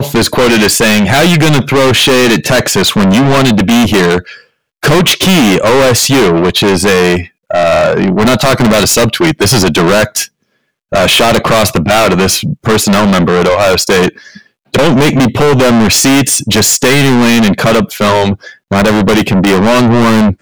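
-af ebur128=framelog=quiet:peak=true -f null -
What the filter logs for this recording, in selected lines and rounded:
Integrated loudness:
  I:          -8.3 LUFS
  Threshold: -18.6 LUFS
Loudness range:
  LRA:         1.9 LU
  Threshold: -28.7 LUFS
  LRA low:    -9.5 LUFS
  LRA high:   -7.6 LUFS
True peak:
  Peak:       -2.4 dBFS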